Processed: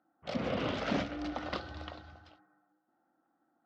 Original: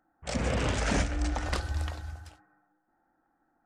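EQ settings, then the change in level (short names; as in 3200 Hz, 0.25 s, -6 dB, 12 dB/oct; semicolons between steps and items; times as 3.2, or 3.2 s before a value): air absorption 54 m; speaker cabinet 190–4300 Hz, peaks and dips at 430 Hz -4 dB, 890 Hz -6 dB, 1700 Hz -8 dB, 2400 Hz -5 dB; 0.0 dB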